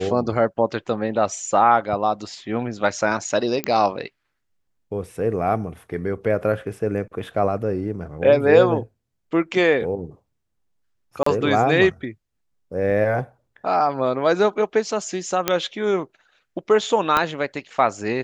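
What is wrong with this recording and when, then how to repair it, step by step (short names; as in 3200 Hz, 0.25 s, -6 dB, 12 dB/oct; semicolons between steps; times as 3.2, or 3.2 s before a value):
3.64 pop -8 dBFS
11.23–11.26 gap 34 ms
15.48 pop -2 dBFS
17.17 pop -5 dBFS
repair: de-click; interpolate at 11.23, 34 ms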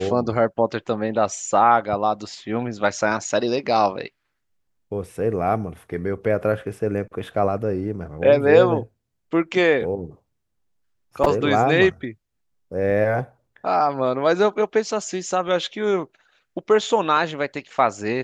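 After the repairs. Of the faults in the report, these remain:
17.17 pop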